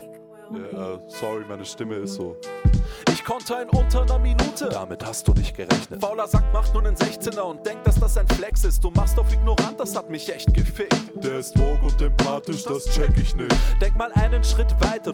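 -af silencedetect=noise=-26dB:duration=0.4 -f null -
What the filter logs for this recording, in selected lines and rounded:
silence_start: 0.00
silence_end: 0.53 | silence_duration: 0.53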